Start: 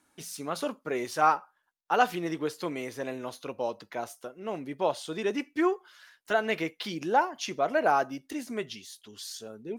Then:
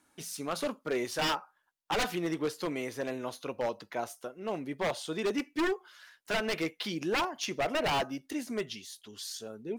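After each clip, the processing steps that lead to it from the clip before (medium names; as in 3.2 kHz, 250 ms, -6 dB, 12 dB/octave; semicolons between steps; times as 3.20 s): wavefolder -23.5 dBFS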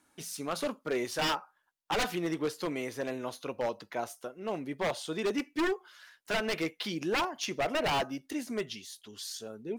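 no audible change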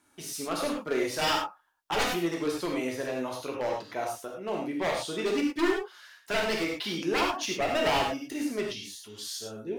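gated-style reverb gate 130 ms flat, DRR -1 dB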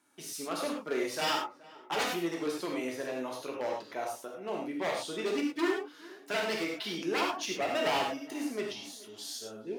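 high-pass 170 Hz 12 dB/octave; tape echo 421 ms, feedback 51%, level -20 dB, low-pass 1.9 kHz; trim -3.5 dB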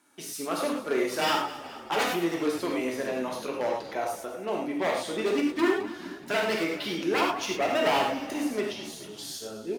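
dynamic bell 5.2 kHz, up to -4 dB, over -47 dBFS, Q 0.73; hum notches 50/100/150 Hz; frequency-shifting echo 212 ms, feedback 55%, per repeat -36 Hz, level -15 dB; trim +5.5 dB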